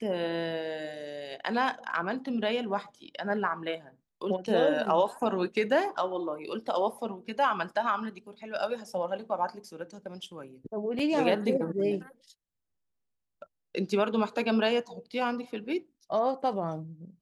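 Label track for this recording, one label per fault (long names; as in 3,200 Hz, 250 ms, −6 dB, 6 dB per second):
10.990000	10.990000	drop-out 4.2 ms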